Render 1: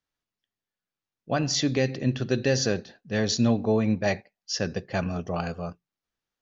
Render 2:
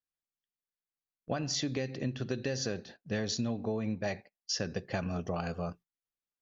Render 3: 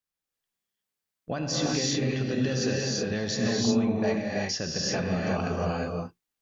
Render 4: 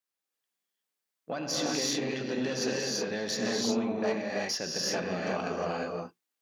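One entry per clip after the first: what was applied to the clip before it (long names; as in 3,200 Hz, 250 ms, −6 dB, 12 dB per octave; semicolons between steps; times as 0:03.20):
downward compressor 8 to 1, threshold −30 dBFS, peak gain reduction 12.5 dB; noise gate −51 dBFS, range −14 dB
in parallel at +2 dB: brickwall limiter −26 dBFS, peak gain reduction 7 dB; on the sum: reverb whose tail is shaped and stops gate 390 ms rising, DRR −3.5 dB; level −3.5 dB
one-sided soft clipper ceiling −24 dBFS; high-pass filter 250 Hz 12 dB per octave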